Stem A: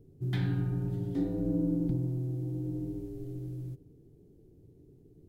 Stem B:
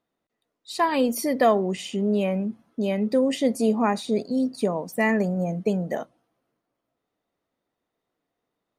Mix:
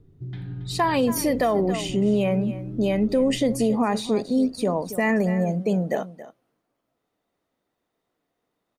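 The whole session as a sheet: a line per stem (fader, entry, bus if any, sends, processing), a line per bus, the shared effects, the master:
-1.0 dB, 0.00 s, no send, echo send -13.5 dB, bass shelf 140 Hz +9 dB; compression, threshold -30 dBFS, peak gain reduction 8.5 dB; Chebyshev low-pass 3.9 kHz, order 2
+3.0 dB, 0.00 s, no send, echo send -16 dB, none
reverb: none
echo: delay 276 ms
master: peak limiter -13 dBFS, peak gain reduction 8 dB

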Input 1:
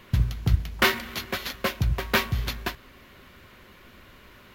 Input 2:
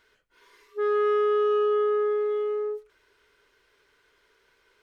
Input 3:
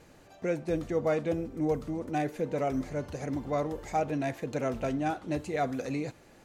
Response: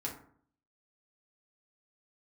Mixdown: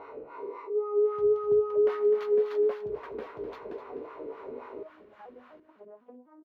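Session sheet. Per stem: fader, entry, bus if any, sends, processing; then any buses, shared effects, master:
+1.5 dB, 1.05 s, no send, echo send -10 dB, compression 3:1, threshold -36 dBFS, peak gain reduction 16 dB
-2.0 dB, 0.00 s, send -3 dB, echo send -23 dB, spectral blur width 96 ms; boxcar filter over 27 samples; level flattener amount 70%
+1.0 dB, 1.25 s, no send, no echo send, vocoder on a broken chord minor triad, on G#3, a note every 250 ms; compression 16:1, threshold -38 dBFS, peak gain reduction 15 dB; valve stage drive 38 dB, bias 0.6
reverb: on, RT60 0.55 s, pre-delay 4 ms
echo: feedback delay 253 ms, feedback 28%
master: wah-wah 3.7 Hz 370–1200 Hz, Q 2.1

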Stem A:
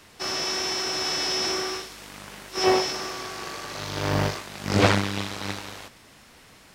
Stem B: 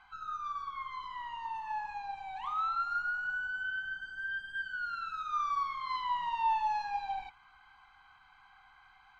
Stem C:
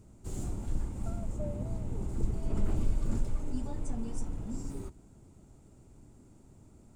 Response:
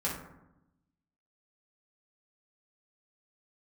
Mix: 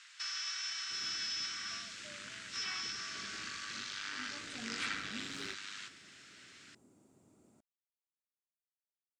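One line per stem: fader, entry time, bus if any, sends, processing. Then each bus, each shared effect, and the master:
-3.0 dB, 0.00 s, bus A, send -18 dB, elliptic band-pass 1.4–7.7 kHz, stop band 50 dB
mute
3.98 s -16.5 dB -> 4.70 s -4.5 dB, 0.65 s, no bus, no send, high-pass 210 Hz 12 dB/octave; band-stop 880 Hz, Q 16
bus A: 0.0 dB, compression, threshold -41 dBFS, peak gain reduction 16.5 dB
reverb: on, RT60 0.90 s, pre-delay 3 ms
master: none

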